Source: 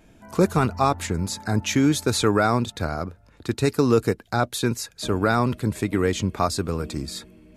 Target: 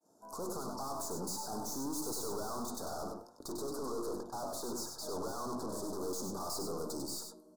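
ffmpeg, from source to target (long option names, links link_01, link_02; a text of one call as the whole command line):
ffmpeg -i in.wav -filter_complex "[0:a]bandreject=frequency=50:width_type=h:width=6,bandreject=frequency=100:width_type=h:width=6,bandreject=frequency=150:width_type=h:width=6,bandreject=frequency=200:width_type=h:width=6,bandreject=frequency=250:width_type=h:width=6,bandreject=frequency=300:width_type=h:width=6,bandreject=frequency=350:width_type=h:width=6,agate=range=-33dB:threshold=-48dB:ratio=3:detection=peak,highpass=260,lowshelf=frequency=450:gain=-8,dynaudnorm=framelen=180:gausssize=9:maxgain=11.5dB,asettb=1/sr,asplit=3[link_01][link_02][link_03];[link_01]atrim=end=3.574[link_04];[link_02]atrim=start=3.57:end=5.94,asetpts=PTS-STARTPTS,afade=type=in:duration=0.004:curve=qsin,afade=type=out:start_time=2.366:duration=0.004:curve=qsin,asplit=2[link_05][link_06];[link_06]highpass=frequency=720:poles=1,volume=15dB,asoftclip=type=tanh:threshold=-14dB[link_07];[link_05][link_07]amix=inputs=2:normalize=0,lowpass=frequency=1200:poles=1,volume=-6dB[link_08];[link_03]atrim=start=5.936[link_09];[link_04][link_08]acrossfade=duration=0.004:curve1=hsin:curve2=qsin[link_10];[link_10][link_09]acrossfade=duration=0.004:curve1=qsin:curve2=hsin,flanger=delay=6.6:depth=9.9:regen=88:speed=0.27:shape=sinusoidal,aeval=exprs='(tanh(126*val(0)+0.35)-tanh(0.35))/126':channel_layout=same,asuperstop=centerf=2400:order=8:qfactor=0.68,aecho=1:1:98:0.531,volume=4dB" out.wav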